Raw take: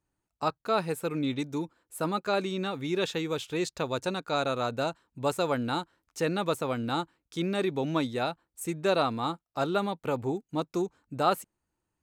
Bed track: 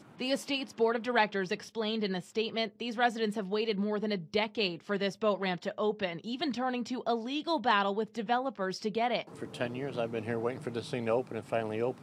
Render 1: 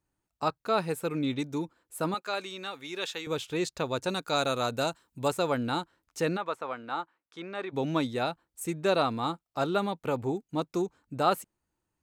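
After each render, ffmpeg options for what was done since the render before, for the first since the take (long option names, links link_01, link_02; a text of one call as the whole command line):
ffmpeg -i in.wav -filter_complex "[0:a]asettb=1/sr,asplit=3[link_01][link_02][link_03];[link_01]atrim=end=2.144[link_04];[link_02]atrim=start=2.14:end=3.27,asetpts=PTS-STARTPTS,afade=type=in:duration=0.004:curve=qsin,afade=type=out:start_time=1.126:duration=0.004:curve=qsin,highpass=frequency=1100:poles=1[link_05];[link_03]atrim=start=3.266[link_06];[link_04][link_05]acrossfade=duration=0.004:curve1=hsin:curve2=qsin[link_07];[link_07][link_06]acrossfade=duration=0.004:curve1=qsin:curve2=hsin,asettb=1/sr,asplit=3[link_08][link_09][link_10];[link_08]atrim=end=4.094[link_11];[link_09]atrim=start=4.09:end=5.28,asetpts=PTS-STARTPTS,afade=type=in:duration=0.004:curve=qsin,afade=type=out:start_time=1.186:duration=0.004:curve=qsin,highshelf=frequency=5000:gain=11.5[link_12];[link_10]atrim=start=5.276[link_13];[link_11][link_12]acrossfade=duration=0.004:curve1=hsin:curve2=qsin[link_14];[link_14][link_13]acrossfade=duration=0.004:curve1=qsin:curve2=hsin,asplit=3[link_15][link_16][link_17];[link_15]afade=type=out:start_time=6.36:duration=0.02[link_18];[link_16]bandpass=frequency=1200:width_type=q:width=0.94,afade=type=in:start_time=6.36:duration=0.02,afade=type=out:start_time=7.72:duration=0.02[link_19];[link_17]afade=type=in:start_time=7.72:duration=0.02[link_20];[link_18][link_19][link_20]amix=inputs=3:normalize=0" out.wav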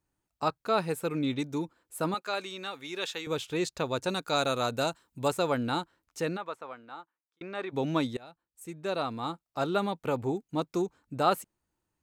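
ffmpeg -i in.wav -filter_complex "[0:a]asplit=3[link_01][link_02][link_03];[link_01]atrim=end=7.41,asetpts=PTS-STARTPTS,afade=type=out:start_time=5.81:duration=1.6[link_04];[link_02]atrim=start=7.41:end=8.17,asetpts=PTS-STARTPTS,afade=type=in:duration=0.004:curve=hsin,afade=type=out:start_time=0.756:duration=0.004:curve=hsin:silence=0.0630957[link_05];[link_03]atrim=start=8.17,asetpts=PTS-STARTPTS,afade=type=in:duration=1.68:silence=0.0630957[link_06];[link_04][link_05][link_06]concat=n=3:v=0:a=1" out.wav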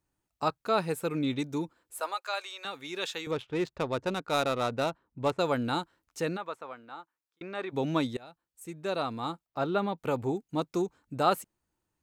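ffmpeg -i in.wav -filter_complex "[0:a]asettb=1/sr,asplit=3[link_01][link_02][link_03];[link_01]atrim=end=2.004[link_04];[link_02]atrim=start=2:end=2.65,asetpts=PTS-STARTPTS,afade=type=in:duration=0.004:curve=qsin,afade=type=out:start_time=0.646:duration=0.004:curve=qsin,highpass=frequency=580:width=0.5412,highpass=frequency=580:width=1.3066[link_05];[link_03]atrim=start=2.646[link_06];[link_04][link_05]acrossfade=duration=0.004:curve1=hsin:curve2=qsin[link_07];[link_07][link_06]acrossfade=duration=0.004:curve1=qsin:curve2=hsin,asettb=1/sr,asplit=3[link_08][link_09][link_10];[link_08]atrim=end=3.314[link_11];[link_09]atrim=start=3.31:end=5.39,asetpts=PTS-STARTPTS,afade=type=in:duration=0.004:curve=qsin,afade=type=out:start_time=2.076:duration=0.004:curve=qsin,adynamicsmooth=sensitivity=4:basefreq=1400[link_12];[link_10]atrim=start=5.386[link_13];[link_11][link_12]acrossfade=duration=0.004:curve1=hsin:curve2=qsin[link_14];[link_14][link_13]acrossfade=duration=0.004:curve1=qsin:curve2=hsin,asettb=1/sr,asplit=3[link_15][link_16][link_17];[link_15]atrim=end=9.464[link_18];[link_16]atrim=start=9.46:end=9.98,asetpts=PTS-STARTPTS,afade=type=in:duration=0.004:curve=qsin,afade=type=out:start_time=0.516:duration=0.004:curve=qsin,equalizer=frequency=9000:width_type=o:width=1.5:gain=-14[link_19];[link_17]atrim=start=9.976[link_20];[link_18][link_19]acrossfade=duration=0.004:curve1=hsin:curve2=qsin[link_21];[link_21][link_20]acrossfade=duration=0.004:curve1=qsin:curve2=hsin" out.wav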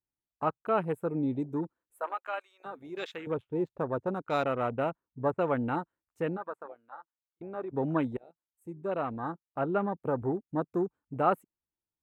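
ffmpeg -i in.wav -af "afwtdn=0.0126,equalizer=frequency=5100:width_type=o:width=1.3:gain=-13.5" out.wav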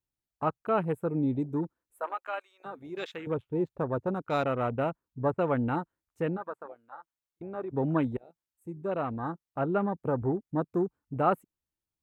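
ffmpeg -i in.wav -af "lowshelf=frequency=160:gain=7.5" out.wav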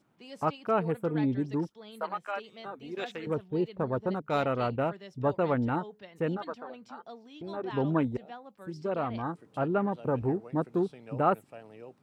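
ffmpeg -i in.wav -i bed.wav -filter_complex "[1:a]volume=-15.5dB[link_01];[0:a][link_01]amix=inputs=2:normalize=0" out.wav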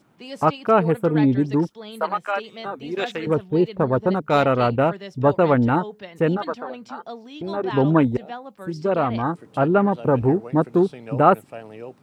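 ffmpeg -i in.wav -af "volume=10.5dB" out.wav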